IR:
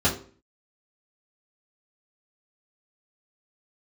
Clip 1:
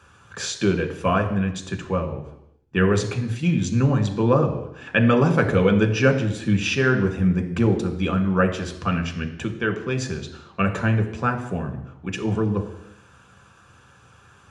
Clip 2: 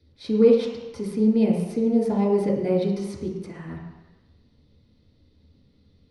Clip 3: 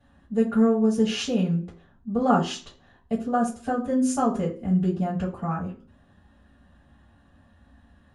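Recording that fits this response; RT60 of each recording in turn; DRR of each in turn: 3; 0.85 s, not exponential, 0.45 s; 3.5, -5.0, -8.0 dB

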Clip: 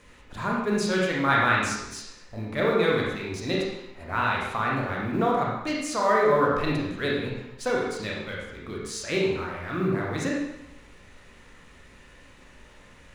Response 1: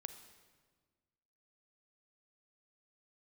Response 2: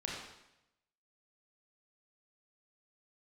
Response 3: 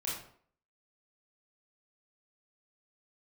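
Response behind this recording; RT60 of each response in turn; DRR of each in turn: 2; 1.5, 0.85, 0.55 s; 9.0, -3.5, -6.5 dB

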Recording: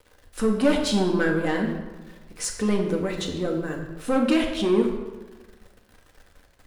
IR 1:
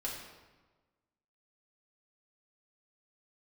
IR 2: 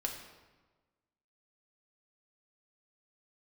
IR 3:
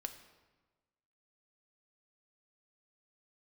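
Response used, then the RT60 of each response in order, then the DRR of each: 2; 1.3, 1.3, 1.3 s; -5.5, 0.5, 6.5 dB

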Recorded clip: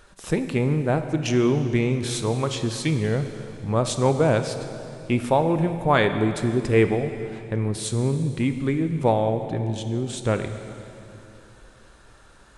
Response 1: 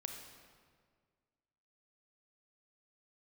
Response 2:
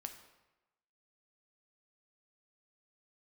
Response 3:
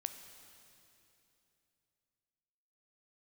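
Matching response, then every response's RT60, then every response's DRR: 3; 1.8, 1.0, 3.0 s; 3.5, 5.5, 8.0 dB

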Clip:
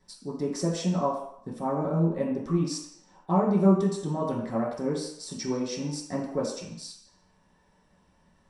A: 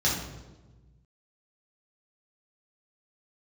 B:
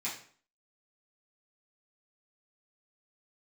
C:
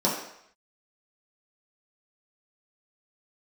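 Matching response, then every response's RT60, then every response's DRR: C; 1.2, 0.50, 0.70 s; -6.0, -9.5, -6.5 dB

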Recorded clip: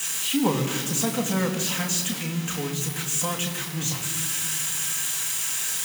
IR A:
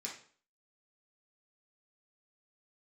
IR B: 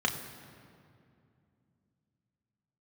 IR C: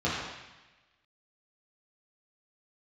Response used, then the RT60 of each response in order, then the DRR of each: B; 0.45, 2.5, 1.1 s; -4.0, 1.5, -9.0 dB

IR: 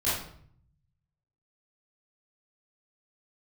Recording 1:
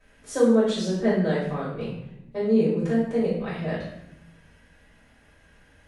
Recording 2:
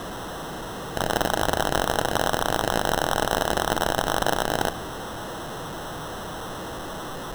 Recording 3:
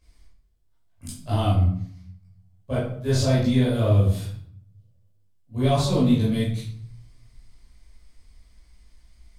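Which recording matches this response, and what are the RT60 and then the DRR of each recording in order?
3; 0.85 s, not exponential, 0.60 s; -12.0, 13.5, -11.5 dB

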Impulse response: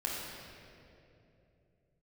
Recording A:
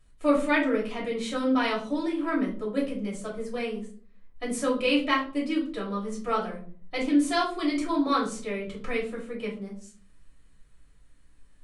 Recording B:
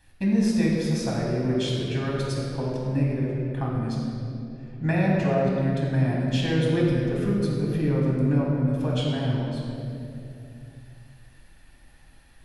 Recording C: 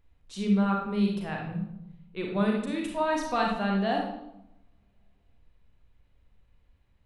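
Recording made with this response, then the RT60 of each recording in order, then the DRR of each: B; 0.45, 3.0, 0.85 s; -5.5, -4.5, 0.0 dB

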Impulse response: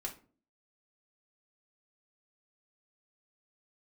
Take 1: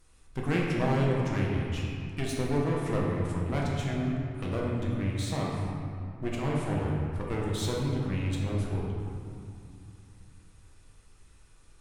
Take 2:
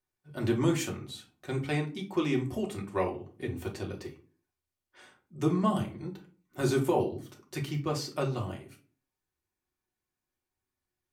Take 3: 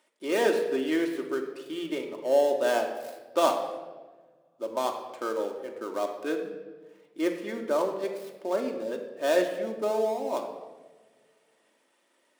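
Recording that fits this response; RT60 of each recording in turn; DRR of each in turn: 2; 2.5, 0.40, 1.4 s; -4.0, -2.0, 2.0 dB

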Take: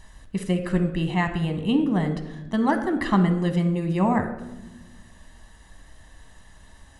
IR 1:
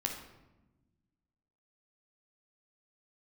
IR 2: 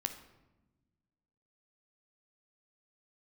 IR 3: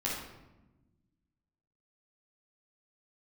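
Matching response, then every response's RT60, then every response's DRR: 2; 1.0, 1.1, 1.0 s; 1.5, 7.0, -6.5 dB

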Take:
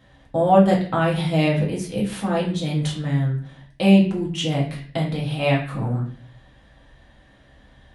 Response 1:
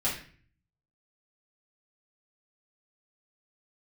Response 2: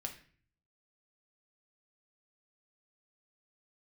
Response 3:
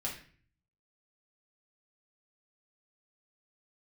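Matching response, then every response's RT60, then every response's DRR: 3; 0.45, 0.45, 0.45 s; -8.5, 3.0, -4.0 dB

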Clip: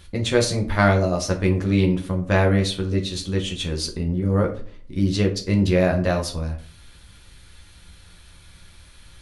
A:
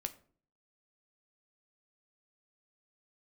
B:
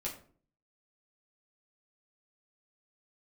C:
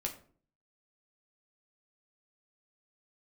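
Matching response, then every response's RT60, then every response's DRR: C; 0.50, 0.45, 0.45 s; 7.5, -4.5, 0.5 dB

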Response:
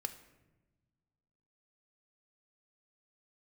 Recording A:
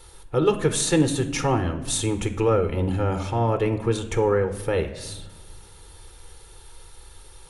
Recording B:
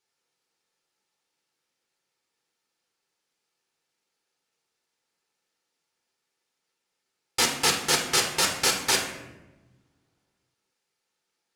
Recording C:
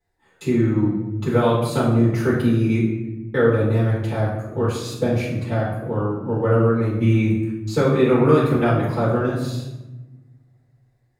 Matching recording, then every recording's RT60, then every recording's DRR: A; 1.1, 1.1, 1.1 s; 8.0, 0.0, -9.5 dB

